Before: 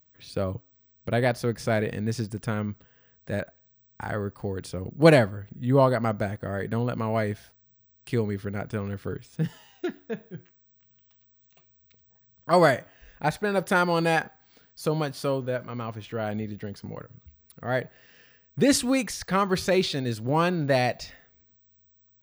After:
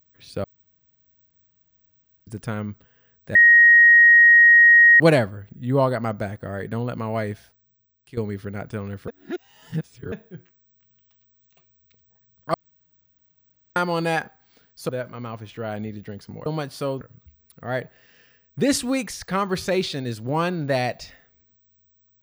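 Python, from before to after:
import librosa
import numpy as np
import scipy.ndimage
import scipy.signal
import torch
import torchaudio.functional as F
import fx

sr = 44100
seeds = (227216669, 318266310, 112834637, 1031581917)

y = fx.edit(x, sr, fx.room_tone_fill(start_s=0.44, length_s=1.83),
    fx.bleep(start_s=3.35, length_s=1.65, hz=1880.0, db=-8.5),
    fx.fade_out_to(start_s=7.32, length_s=0.85, floor_db=-14.0),
    fx.reverse_span(start_s=9.08, length_s=1.04),
    fx.room_tone_fill(start_s=12.54, length_s=1.22),
    fx.move(start_s=14.89, length_s=0.55, to_s=17.01), tone=tone)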